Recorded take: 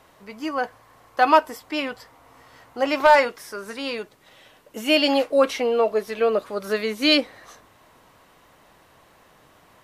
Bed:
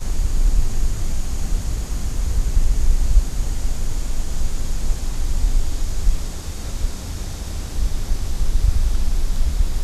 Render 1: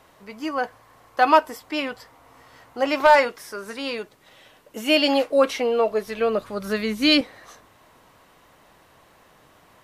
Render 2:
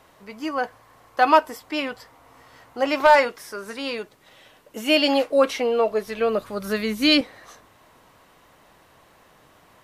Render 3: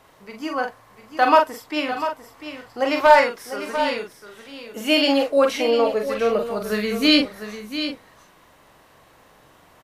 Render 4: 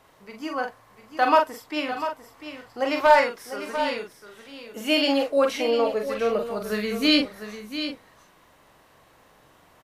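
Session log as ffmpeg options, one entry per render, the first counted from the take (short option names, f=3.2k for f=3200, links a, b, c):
-filter_complex "[0:a]asettb=1/sr,asplit=3[a][b][c];[a]atrim=end=5.624[d];[b]atrim=start=5.62:end=7.21,asetpts=PTS-STARTPTS,afade=t=in:d=0.004:c=qsin,afade=t=out:st=1.586:d=0.004:c=qsin,asubboost=boost=10.5:cutoff=190[e];[c]atrim=start=7.206[f];[d][e]acrossfade=d=0.004:c1=hsin:c2=qsin[g];[g][f]acrossfade=d=0.004:c1=qsin:c2=hsin"
-filter_complex "[0:a]asettb=1/sr,asplit=3[a][b][c];[a]atrim=end=6.284[d];[b]atrim=start=6.28:end=7.07,asetpts=PTS-STARTPTS,afade=t=in:d=0.004:c=qsin,afade=t=out:st=0.786:d=0.004:c=qsin,highshelf=f=12k:g=7.5[e];[c]atrim=start=7.066[f];[d][e]acrossfade=d=0.004:c1=hsin:c2=qsin[g];[g][f]acrossfade=d=0.004:c1=qsin:c2=hsin"
-filter_complex "[0:a]asplit=2[a][b];[b]adelay=43,volume=-5dB[c];[a][c]amix=inputs=2:normalize=0,aecho=1:1:697:0.299"
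-af "volume=-3.5dB"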